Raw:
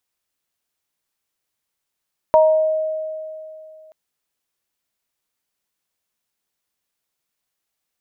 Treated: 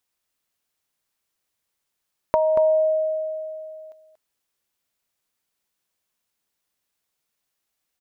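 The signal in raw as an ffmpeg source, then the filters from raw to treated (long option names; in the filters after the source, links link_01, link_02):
-f lavfi -i "aevalsrc='0.376*pow(10,-3*t/2.71)*sin(2*PI*628*t)+0.251*pow(10,-3*t/0.53)*sin(2*PI*940*t)':duration=1.58:sample_rate=44100"
-af "acompressor=threshold=-17dB:ratio=6,aecho=1:1:234:0.355"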